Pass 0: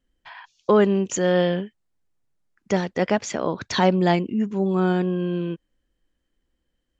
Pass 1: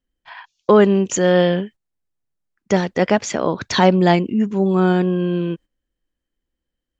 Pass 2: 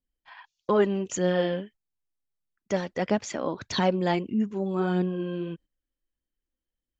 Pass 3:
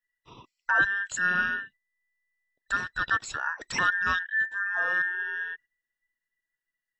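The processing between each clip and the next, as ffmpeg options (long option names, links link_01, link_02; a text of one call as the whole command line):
ffmpeg -i in.wav -af "agate=range=-11dB:threshold=-42dB:ratio=16:detection=peak,volume=5dB" out.wav
ffmpeg -i in.wav -af "flanger=delay=0.2:depth=3.6:regen=50:speed=1.6:shape=sinusoidal,volume=-6dB" out.wav
ffmpeg -i in.wav -af "afftfilt=real='real(if(between(b,1,1012),(2*floor((b-1)/92)+1)*92-b,b),0)':imag='imag(if(between(b,1,1012),(2*floor((b-1)/92)+1)*92-b,b),0)*if(between(b,1,1012),-1,1)':win_size=2048:overlap=0.75,volume=-1.5dB" out.wav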